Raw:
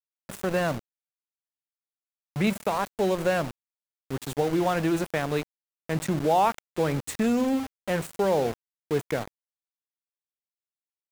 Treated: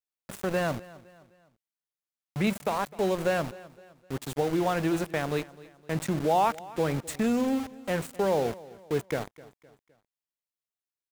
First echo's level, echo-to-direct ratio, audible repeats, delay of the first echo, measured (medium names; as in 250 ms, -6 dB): -20.0 dB, -19.0 dB, 3, 257 ms